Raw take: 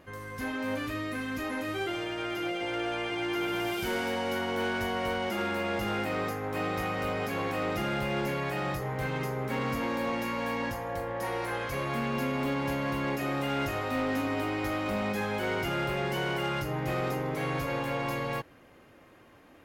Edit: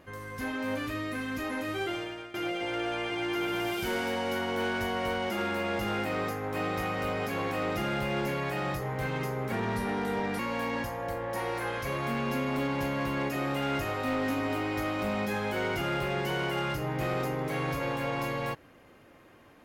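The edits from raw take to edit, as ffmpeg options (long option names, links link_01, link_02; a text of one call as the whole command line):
ffmpeg -i in.wav -filter_complex "[0:a]asplit=4[link_01][link_02][link_03][link_04];[link_01]atrim=end=2.34,asetpts=PTS-STARTPTS,afade=type=out:start_time=1.93:duration=0.41:silence=0.149624[link_05];[link_02]atrim=start=2.34:end=9.524,asetpts=PTS-STARTPTS,afade=type=in:duration=0.004:curve=hsin:silence=0.149624[link_06];[link_03]atrim=start=9.52:end=10.26,asetpts=PTS-STARTPTS,asetrate=37485,aresample=44100[link_07];[link_04]atrim=start=10.256[link_08];[link_05][link_06]concat=n=2:v=0:a=1[link_09];[link_09][link_07]acrossfade=duration=0.004:curve1=hsin:curve2=hsin[link_10];[link_10][link_08]acrossfade=duration=0.004:curve1=hsin:curve2=hsin" out.wav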